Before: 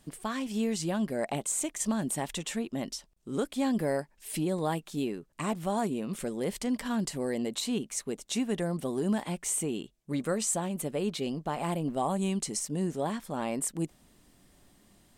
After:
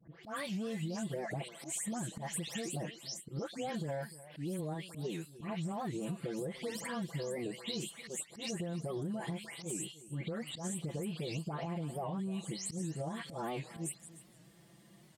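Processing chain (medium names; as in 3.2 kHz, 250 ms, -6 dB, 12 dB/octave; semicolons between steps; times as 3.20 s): delay that grows with frequency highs late, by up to 233 ms; high-pass 80 Hz 24 dB/octave; treble shelf 3.8 kHz -6.5 dB; comb 6 ms, depth 84%; peak limiter -26.5 dBFS, peak gain reduction 12 dB; graphic EQ 125/250/1000 Hz +4/-4/-4 dB; slow attack 112 ms; compression, threshold -36 dBFS, peak gain reduction 6 dB; delay 300 ms -16.5 dB; warped record 78 rpm, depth 160 cents; trim +1 dB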